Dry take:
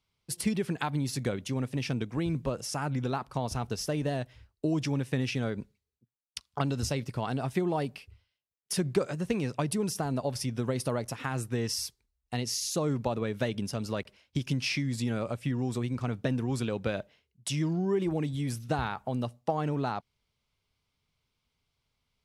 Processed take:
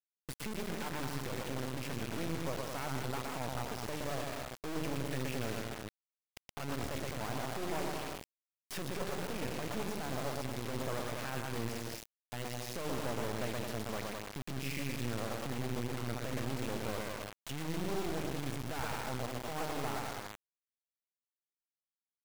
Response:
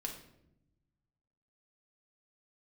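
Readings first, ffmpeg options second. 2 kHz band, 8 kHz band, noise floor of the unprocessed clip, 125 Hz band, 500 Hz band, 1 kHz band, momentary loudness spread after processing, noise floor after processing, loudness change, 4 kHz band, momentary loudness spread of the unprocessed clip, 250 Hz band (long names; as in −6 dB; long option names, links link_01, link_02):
−2.5 dB, −7.0 dB, −82 dBFS, −9.0 dB, −6.5 dB, −4.0 dB, 6 LU, below −85 dBFS, −7.5 dB, −5.5 dB, 6 LU, −9.0 dB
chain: -filter_complex "[0:a]equalizer=frequency=160:width_type=o:width=1.5:gain=-3,bandreject=frequency=50:width_type=h:width=6,bandreject=frequency=100:width_type=h:width=6,bandreject=frequency=150:width_type=h:width=6,bandreject=frequency=200:width_type=h:width=6,bandreject=frequency=250:width_type=h:width=6,bandreject=frequency=300:width_type=h:width=6,bandreject=frequency=350:width_type=h:width=6,bandreject=frequency=400:width_type=h:width=6,acrossover=split=2900[link_01][link_02];[link_02]acompressor=threshold=-51dB:ratio=4:attack=1:release=60[link_03];[link_01][link_03]amix=inputs=2:normalize=0,highshelf=frequency=3500:gain=-3,asplit=2[link_04][link_05];[link_05]aecho=0:1:120|210|277.5|328.1|366.1:0.631|0.398|0.251|0.158|0.1[link_06];[link_04][link_06]amix=inputs=2:normalize=0,volume=26dB,asoftclip=hard,volume=-26dB,acompressor=threshold=-35dB:ratio=3,alimiter=level_in=13.5dB:limit=-24dB:level=0:latency=1:release=467,volume=-13.5dB,acrusher=bits=5:dc=4:mix=0:aa=0.000001,volume=8.5dB"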